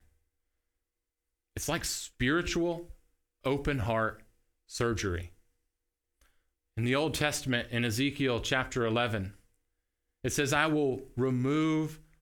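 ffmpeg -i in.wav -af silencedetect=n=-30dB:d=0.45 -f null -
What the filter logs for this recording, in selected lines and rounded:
silence_start: 0.00
silence_end: 1.57 | silence_duration: 1.57
silence_start: 2.75
silence_end: 3.46 | silence_duration: 0.71
silence_start: 4.09
silence_end: 4.75 | silence_duration: 0.66
silence_start: 5.19
silence_end: 6.78 | silence_duration: 1.58
silence_start: 9.23
silence_end: 10.25 | silence_duration: 1.02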